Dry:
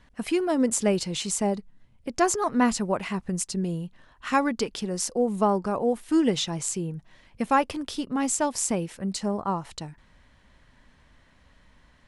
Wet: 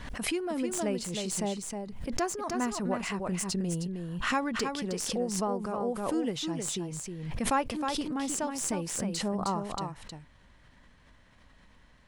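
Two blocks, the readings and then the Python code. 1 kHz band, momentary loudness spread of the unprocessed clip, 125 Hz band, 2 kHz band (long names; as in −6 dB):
−5.5 dB, 12 LU, −3.0 dB, −3.0 dB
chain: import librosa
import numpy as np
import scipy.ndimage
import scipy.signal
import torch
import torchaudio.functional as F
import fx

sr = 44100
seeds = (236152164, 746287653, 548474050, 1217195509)

y = fx.tracing_dist(x, sr, depth_ms=0.023)
y = fx.rider(y, sr, range_db=10, speed_s=0.5)
y = y + 10.0 ** (-5.5 / 20.0) * np.pad(y, (int(313 * sr / 1000.0), 0))[:len(y)]
y = fx.pre_swell(y, sr, db_per_s=44.0)
y = y * librosa.db_to_amplitude(-7.5)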